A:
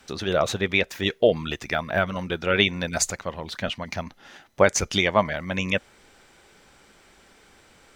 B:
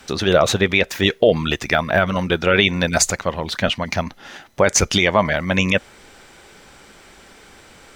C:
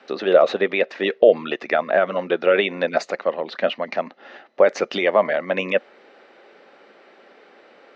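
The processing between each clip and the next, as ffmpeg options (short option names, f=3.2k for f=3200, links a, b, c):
-af "alimiter=level_in=11dB:limit=-1dB:release=50:level=0:latency=1,volume=-2dB"
-af "highpass=f=270:w=0.5412,highpass=f=270:w=1.3066,equalizer=f=300:t=q:w=4:g=-4,equalizer=f=560:t=q:w=4:g=4,equalizer=f=960:t=q:w=4:g=-6,equalizer=f=1.5k:t=q:w=4:g=-5,equalizer=f=2.3k:t=q:w=4:g=-6,equalizer=f=3.3k:t=q:w=4:g=-9,lowpass=f=3.4k:w=0.5412,lowpass=f=3.4k:w=1.3066"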